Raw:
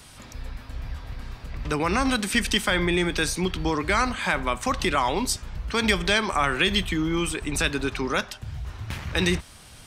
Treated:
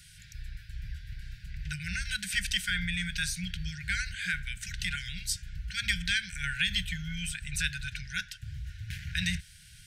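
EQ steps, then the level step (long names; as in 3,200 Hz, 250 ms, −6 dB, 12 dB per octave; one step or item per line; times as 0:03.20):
linear-phase brick-wall band-stop 190–1,400 Hz
−5.5 dB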